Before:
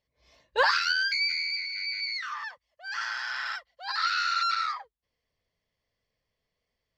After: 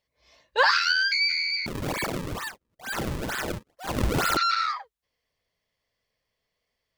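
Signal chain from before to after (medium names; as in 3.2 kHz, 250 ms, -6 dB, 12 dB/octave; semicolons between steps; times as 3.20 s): bass shelf 370 Hz -6 dB; 1.66–4.37 s: decimation with a swept rate 35×, swing 160% 2.2 Hz; trim +3.5 dB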